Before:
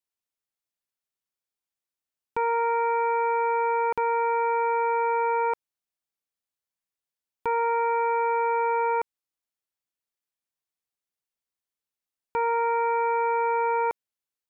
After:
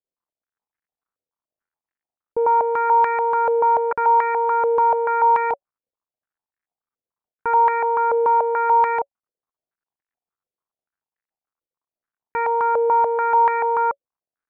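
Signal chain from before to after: companding laws mixed up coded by mu; band-stop 560 Hz, Q 16; step-sequenced low-pass 6.9 Hz 530–1800 Hz

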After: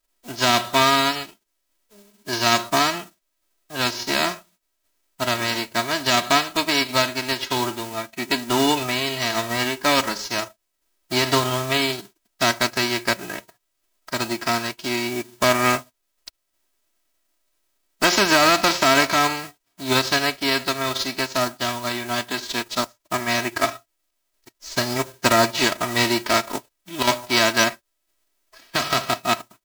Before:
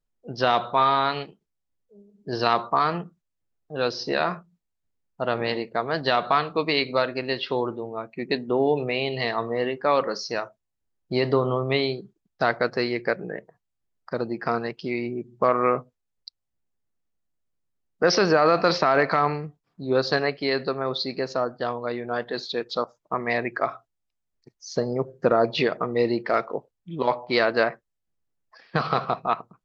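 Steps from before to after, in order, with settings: formants flattened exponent 0.3; comb 3.1 ms, depth 74%; trim +1 dB

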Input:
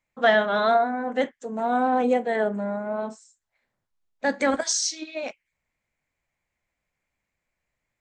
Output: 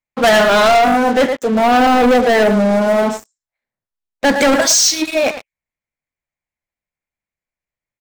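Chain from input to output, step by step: speakerphone echo 110 ms, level -12 dB; waveshaping leveller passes 5

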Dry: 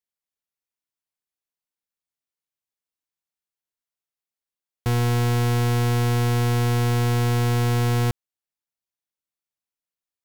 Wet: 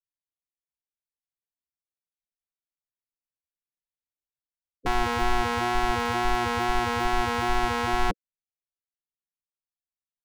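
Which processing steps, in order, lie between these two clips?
wow and flutter 18 cents; spectral gate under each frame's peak -15 dB weak; RIAA curve playback; trim +5.5 dB

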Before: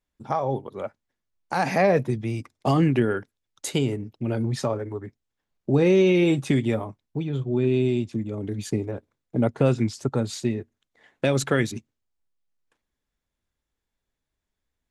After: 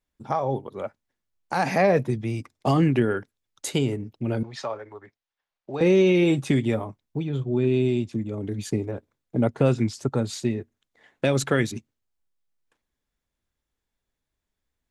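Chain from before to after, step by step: 4.43–5.81 s: three-band isolator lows -17 dB, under 550 Hz, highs -21 dB, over 6.1 kHz

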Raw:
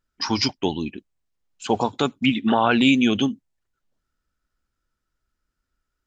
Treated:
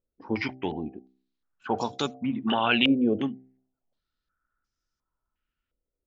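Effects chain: de-hum 64.82 Hz, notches 12; step-sequenced low-pass 2.8 Hz 510–5700 Hz; trim -7 dB

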